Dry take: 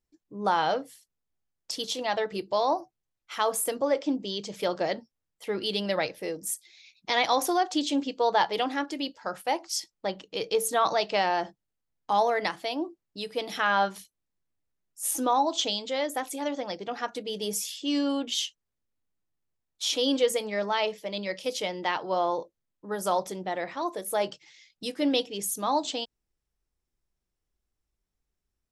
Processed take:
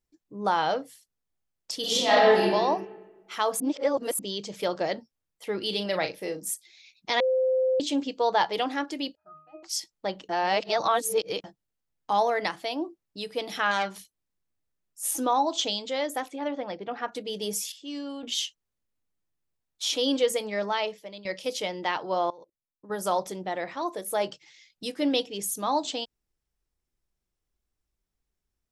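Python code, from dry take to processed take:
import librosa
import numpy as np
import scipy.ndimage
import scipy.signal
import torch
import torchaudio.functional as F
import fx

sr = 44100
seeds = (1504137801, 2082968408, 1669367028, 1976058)

y = fx.reverb_throw(x, sr, start_s=1.8, length_s=0.61, rt60_s=1.3, drr_db=-9.0)
y = fx.doubler(y, sr, ms=38.0, db=-9.0, at=(5.63, 6.54))
y = fx.octave_resonator(y, sr, note='D#', decay_s=0.54, at=(9.15, 9.63))
y = fx.transformer_sat(y, sr, knee_hz=2000.0, at=(13.71, 15.12))
y = fx.lowpass(y, sr, hz=2800.0, slope=12, at=(16.27, 17.11), fade=0.02)
y = fx.level_steps(y, sr, step_db=24, at=(22.3, 22.9))
y = fx.edit(y, sr, fx.reverse_span(start_s=3.6, length_s=0.59),
    fx.bleep(start_s=7.2, length_s=0.6, hz=518.0, db=-20.5),
    fx.reverse_span(start_s=10.29, length_s=1.15),
    fx.clip_gain(start_s=17.72, length_s=0.51, db=-9.0),
    fx.fade_out_to(start_s=20.7, length_s=0.55, floor_db=-14.0), tone=tone)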